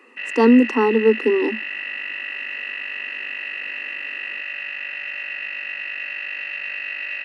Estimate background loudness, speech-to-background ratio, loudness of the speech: −27.0 LKFS, 9.5 dB, −17.5 LKFS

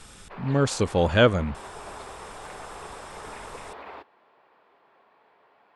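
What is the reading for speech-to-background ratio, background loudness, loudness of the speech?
19.0 dB, −42.0 LKFS, −23.0 LKFS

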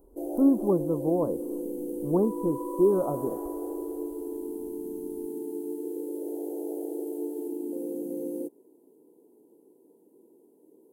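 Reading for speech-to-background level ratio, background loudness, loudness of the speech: 7.5 dB, −34.5 LKFS, −27.0 LKFS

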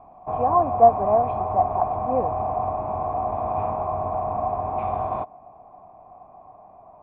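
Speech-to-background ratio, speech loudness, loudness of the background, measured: 4.5 dB, −22.0 LKFS, −26.5 LKFS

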